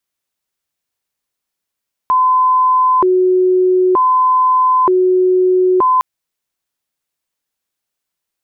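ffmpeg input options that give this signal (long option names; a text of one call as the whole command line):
ffmpeg -f lavfi -i "aevalsrc='0.376*sin(2*PI*(694*t+326/0.54*(0.5-abs(mod(0.54*t,1)-0.5))))':duration=3.91:sample_rate=44100" out.wav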